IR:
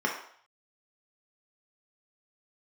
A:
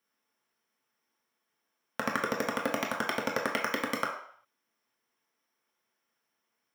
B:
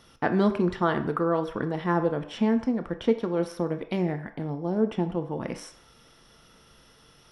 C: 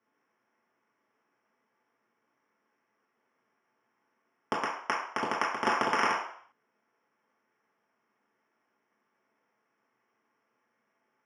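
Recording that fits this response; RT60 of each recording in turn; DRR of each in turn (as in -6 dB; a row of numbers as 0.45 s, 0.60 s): A; 0.60 s, 0.60 s, 0.60 s; -2.0 dB, 7.0 dB, -6.5 dB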